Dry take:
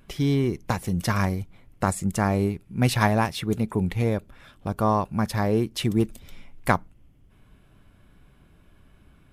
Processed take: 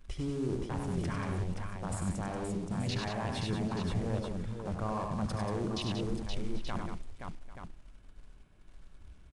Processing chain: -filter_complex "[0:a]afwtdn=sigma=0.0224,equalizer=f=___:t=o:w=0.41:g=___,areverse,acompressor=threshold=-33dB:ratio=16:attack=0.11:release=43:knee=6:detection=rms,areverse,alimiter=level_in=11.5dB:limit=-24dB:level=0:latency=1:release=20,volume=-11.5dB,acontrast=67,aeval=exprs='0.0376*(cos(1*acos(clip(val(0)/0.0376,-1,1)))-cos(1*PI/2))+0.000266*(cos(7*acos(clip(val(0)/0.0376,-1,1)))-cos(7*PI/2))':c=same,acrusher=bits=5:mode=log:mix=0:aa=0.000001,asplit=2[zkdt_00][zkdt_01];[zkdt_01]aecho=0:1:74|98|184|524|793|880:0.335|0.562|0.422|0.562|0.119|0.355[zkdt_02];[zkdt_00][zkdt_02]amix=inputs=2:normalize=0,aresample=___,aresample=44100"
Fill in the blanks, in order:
150, -2, 22050